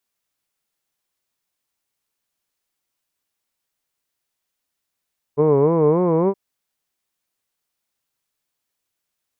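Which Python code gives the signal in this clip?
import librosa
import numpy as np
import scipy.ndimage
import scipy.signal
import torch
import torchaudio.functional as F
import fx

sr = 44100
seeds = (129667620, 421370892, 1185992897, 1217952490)

y = fx.vowel(sr, seeds[0], length_s=0.97, word='hood', hz=141.0, glide_st=4.5, vibrato_hz=3.5, vibrato_st=1.45)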